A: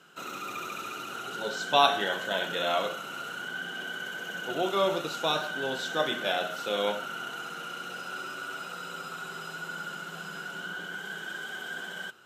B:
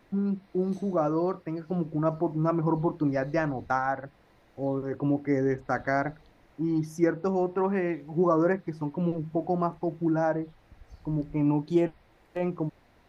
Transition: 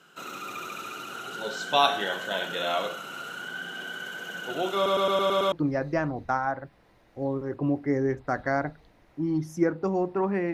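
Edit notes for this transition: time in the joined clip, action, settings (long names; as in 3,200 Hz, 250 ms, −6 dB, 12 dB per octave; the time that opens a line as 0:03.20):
A
0:04.75: stutter in place 0.11 s, 7 plays
0:05.52: continue with B from 0:02.93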